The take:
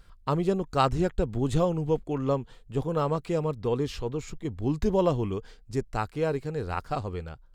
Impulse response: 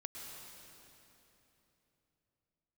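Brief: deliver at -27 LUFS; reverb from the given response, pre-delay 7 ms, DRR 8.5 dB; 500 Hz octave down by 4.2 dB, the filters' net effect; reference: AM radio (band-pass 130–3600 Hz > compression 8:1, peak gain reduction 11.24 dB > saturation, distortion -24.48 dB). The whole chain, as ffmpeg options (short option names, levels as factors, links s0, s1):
-filter_complex "[0:a]equalizer=f=500:t=o:g=-5,asplit=2[s0][s1];[1:a]atrim=start_sample=2205,adelay=7[s2];[s1][s2]afir=irnorm=-1:irlink=0,volume=0.473[s3];[s0][s3]amix=inputs=2:normalize=0,highpass=130,lowpass=3600,acompressor=threshold=0.0316:ratio=8,asoftclip=threshold=0.075,volume=3.16"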